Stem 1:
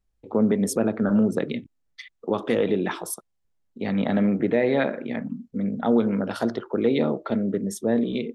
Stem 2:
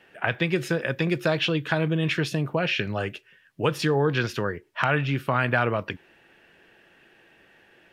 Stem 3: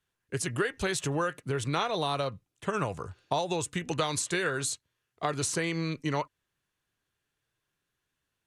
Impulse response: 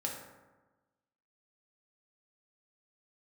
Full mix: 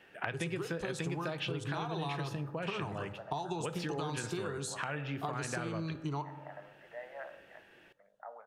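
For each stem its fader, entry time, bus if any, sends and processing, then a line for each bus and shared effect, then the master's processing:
−19.0 dB, 2.40 s, send −14 dB, elliptic band-pass filter 610–1,900 Hz, stop band 40 dB; downward expander −49 dBFS
−4.0 dB, 0.00 s, send −18.5 dB, automatic ducking −9 dB, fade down 1.95 s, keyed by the third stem
−3.0 dB, 0.00 s, send −9 dB, high-shelf EQ 5,100 Hz −10.5 dB; phaser with its sweep stopped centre 360 Hz, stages 8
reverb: on, RT60 1.2 s, pre-delay 3 ms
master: downward compressor, threshold −33 dBFS, peak gain reduction 9.5 dB

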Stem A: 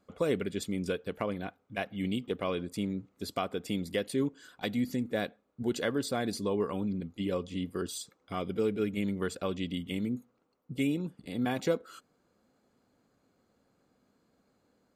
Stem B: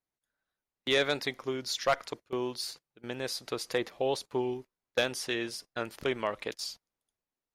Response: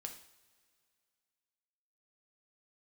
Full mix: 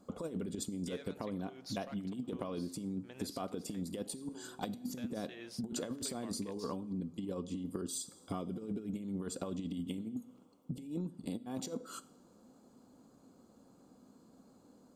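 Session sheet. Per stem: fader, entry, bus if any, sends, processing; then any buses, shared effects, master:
−2.0 dB, 0.00 s, send −4.5 dB, octave-band graphic EQ 250/1,000/2,000/8,000 Hz +8/+5/−11/+6 dB; compressor whose output falls as the input rises −30 dBFS, ratio −0.5
0:03.43 −9.5 dB → 0:03.85 −20.5 dB → 0:04.82 −20.5 dB → 0:05.29 −9 dB, 0.00 s, no send, downward compressor 3 to 1, threshold −31 dBFS, peak gain reduction 7.5 dB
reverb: on, pre-delay 3 ms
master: downward compressor 5 to 1, threshold −37 dBFS, peak gain reduction 14 dB

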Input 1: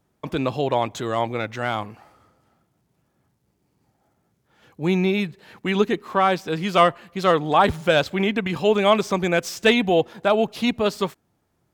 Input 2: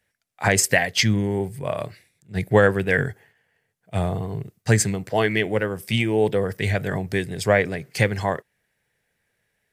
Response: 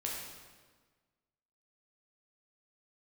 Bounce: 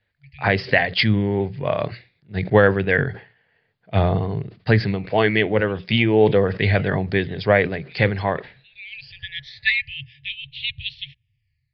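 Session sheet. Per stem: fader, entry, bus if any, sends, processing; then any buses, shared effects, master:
−3.0 dB, 0.00 s, no send, brick-wall band-stop 150–1,700 Hz; all-pass phaser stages 12, 0.21 Hz, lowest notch 500–1,600 Hz; automatic ducking −18 dB, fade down 1.10 s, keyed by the second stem
−0.5 dB, 0.00 s, no send, level that may fall only so fast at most 150 dB per second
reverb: not used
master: Butterworth low-pass 4,800 Hz 96 dB per octave; mains-hum notches 60/120/180 Hz; automatic gain control gain up to 7 dB

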